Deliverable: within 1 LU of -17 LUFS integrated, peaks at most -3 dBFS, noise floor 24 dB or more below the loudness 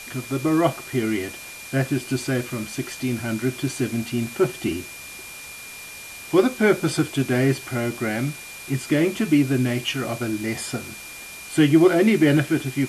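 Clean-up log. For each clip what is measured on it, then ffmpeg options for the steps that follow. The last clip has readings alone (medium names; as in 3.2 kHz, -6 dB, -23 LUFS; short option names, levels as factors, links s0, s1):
steady tone 2.4 kHz; tone level -39 dBFS; noise floor -39 dBFS; noise floor target -47 dBFS; loudness -22.5 LUFS; peak level -5.5 dBFS; loudness target -17.0 LUFS
-> -af "bandreject=f=2400:w=30"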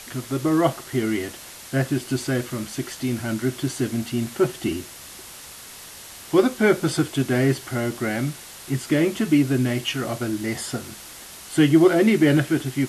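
steady tone not found; noise floor -41 dBFS; noise floor target -47 dBFS
-> -af "afftdn=nr=6:nf=-41"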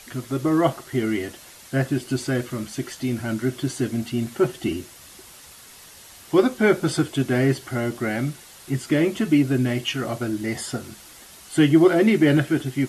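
noise floor -46 dBFS; noise floor target -47 dBFS
-> -af "afftdn=nr=6:nf=-46"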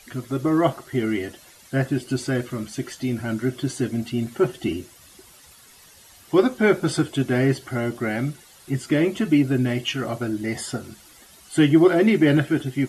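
noise floor -50 dBFS; loudness -22.5 LUFS; peak level -5.5 dBFS; loudness target -17.0 LUFS
-> -af "volume=1.88,alimiter=limit=0.708:level=0:latency=1"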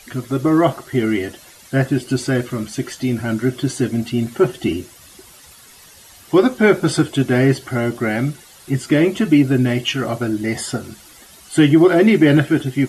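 loudness -17.5 LUFS; peak level -3.0 dBFS; noise floor -45 dBFS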